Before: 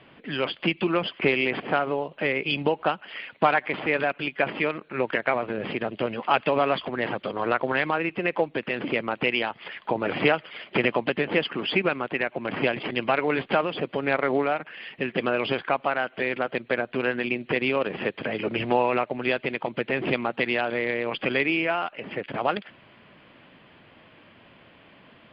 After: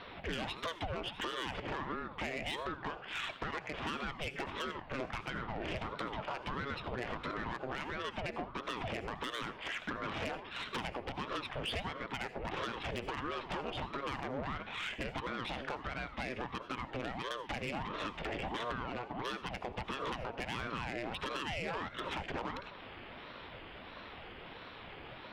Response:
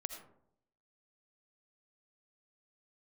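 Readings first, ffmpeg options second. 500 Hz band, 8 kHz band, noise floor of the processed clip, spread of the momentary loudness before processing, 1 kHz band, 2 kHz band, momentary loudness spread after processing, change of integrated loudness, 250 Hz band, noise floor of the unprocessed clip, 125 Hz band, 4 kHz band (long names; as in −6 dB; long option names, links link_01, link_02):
−16.5 dB, can't be measured, −50 dBFS, 6 LU, −11.5 dB, −13.5 dB, 5 LU, −14.0 dB, −14.0 dB, −54 dBFS, −8.5 dB, −9.0 dB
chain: -filter_complex "[0:a]bandreject=frequency=133.9:width_type=h:width=4,bandreject=frequency=267.8:width_type=h:width=4,bandreject=frequency=401.7:width_type=h:width=4,bandreject=frequency=535.6:width_type=h:width=4,bandreject=frequency=669.5:width_type=h:width=4,bandreject=frequency=803.4:width_type=h:width=4,bandreject=frequency=937.3:width_type=h:width=4,acompressor=threshold=-35dB:ratio=16,asoftclip=type=tanh:threshold=-36.5dB,asplit=2[link_01][link_02];[1:a]atrim=start_sample=2205[link_03];[link_02][link_03]afir=irnorm=-1:irlink=0,volume=2dB[link_04];[link_01][link_04]amix=inputs=2:normalize=0,aeval=exprs='val(0)*sin(2*PI*480*n/s+480*0.75/1.5*sin(2*PI*1.5*n/s))':channel_layout=same,volume=1dB"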